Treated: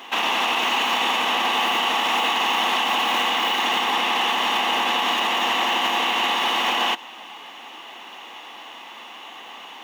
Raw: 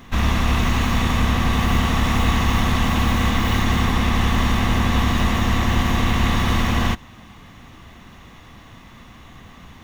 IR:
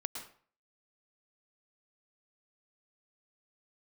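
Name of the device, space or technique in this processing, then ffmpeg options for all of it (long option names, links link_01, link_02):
laptop speaker: -af "highpass=frequency=340:width=0.5412,highpass=frequency=340:width=1.3066,equalizer=frequency=850:width_type=o:width=0.43:gain=10.5,equalizer=frequency=2900:width_type=o:width=0.47:gain=12,alimiter=limit=-15.5dB:level=0:latency=1:release=60,volume=3dB"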